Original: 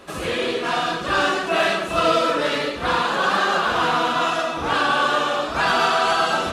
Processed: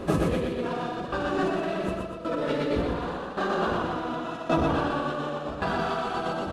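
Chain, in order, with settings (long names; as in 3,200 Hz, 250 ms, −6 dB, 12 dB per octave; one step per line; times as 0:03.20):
tilt shelving filter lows +9.5 dB, about 740 Hz
compressor whose output falls as the input rises −27 dBFS, ratio −1
shaped tremolo saw down 0.89 Hz, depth 85%
on a send: repeating echo 121 ms, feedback 48%, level −4 dB
on the sum: level +1 dB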